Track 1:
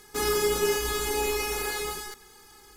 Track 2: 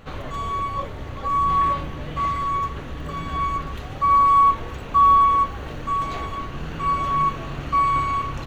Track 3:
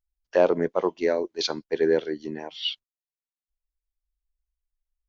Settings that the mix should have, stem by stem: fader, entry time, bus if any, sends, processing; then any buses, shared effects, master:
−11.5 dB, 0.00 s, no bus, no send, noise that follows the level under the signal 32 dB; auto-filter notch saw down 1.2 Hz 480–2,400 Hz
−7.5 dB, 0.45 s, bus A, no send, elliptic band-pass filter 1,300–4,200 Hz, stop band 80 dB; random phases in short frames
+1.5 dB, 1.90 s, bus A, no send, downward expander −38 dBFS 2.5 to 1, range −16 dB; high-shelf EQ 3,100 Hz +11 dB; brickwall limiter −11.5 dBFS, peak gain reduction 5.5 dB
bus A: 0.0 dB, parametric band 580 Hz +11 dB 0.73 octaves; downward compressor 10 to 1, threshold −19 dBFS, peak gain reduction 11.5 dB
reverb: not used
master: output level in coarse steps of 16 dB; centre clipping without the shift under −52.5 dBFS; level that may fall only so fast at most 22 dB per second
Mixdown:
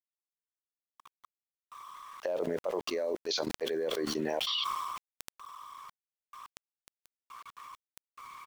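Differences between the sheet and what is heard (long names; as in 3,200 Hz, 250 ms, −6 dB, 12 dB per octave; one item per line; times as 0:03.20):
stem 1: muted
stem 2 −7.5 dB → −16.5 dB
stem 3: missing downward expander −38 dBFS 2.5 to 1, range −16 dB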